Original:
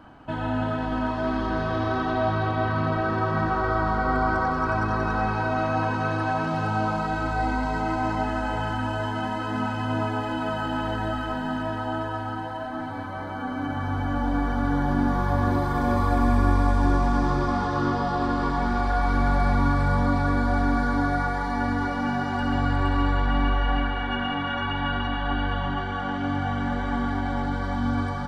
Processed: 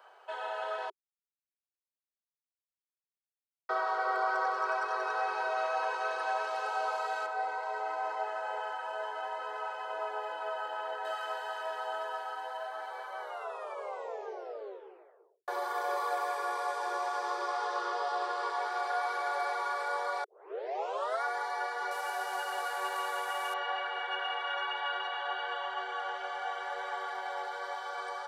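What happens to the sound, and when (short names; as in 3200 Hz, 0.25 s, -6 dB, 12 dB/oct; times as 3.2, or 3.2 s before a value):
0.9–3.69 mute
7.26–11.05 high shelf 2800 Hz -11.5 dB
13.18 tape stop 2.30 s
20.24 tape start 0.99 s
21.91–23.54 delta modulation 64 kbps, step -39 dBFS
whole clip: steep high-pass 390 Hz 96 dB/oct; high shelf 4800 Hz +6.5 dB; gain -6 dB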